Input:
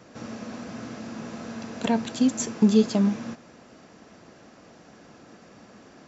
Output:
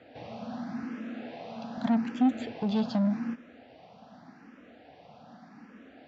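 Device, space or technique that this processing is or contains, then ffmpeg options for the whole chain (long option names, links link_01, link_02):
barber-pole phaser into a guitar amplifier: -filter_complex "[0:a]asplit=2[link_01][link_02];[link_02]afreqshift=0.84[link_03];[link_01][link_03]amix=inputs=2:normalize=1,asoftclip=type=tanh:threshold=-23.5dB,highpass=78,equalizer=frequency=110:width_type=q:width=4:gain=-3,equalizer=frequency=250:width_type=q:width=4:gain=6,equalizer=frequency=370:width_type=q:width=4:gain=-8,equalizer=frequency=760:width_type=q:width=4:gain=7,equalizer=frequency=1100:width_type=q:width=4:gain=-4,lowpass=frequency=4100:width=0.5412,lowpass=frequency=4100:width=1.3066,asettb=1/sr,asplit=3[link_04][link_05][link_06];[link_04]atrim=end=0.834[link_07];[link_05]atrim=start=0.83:end=1.78,asetpts=PTS-STARTPTS,afade=type=in:duration=0.004:curve=qsin,afade=type=out:start_time=0.946:duration=0.004:curve=qsin,highpass=160[link_08];[link_06]atrim=start=1.776[link_09];[link_07][link_08]acrossfade=duration=0.004:curve1=hsin:curve2=qsin[link_10];[link_10][link_09]acrossfade=duration=0.004:curve1=qsin:curve2=hsin"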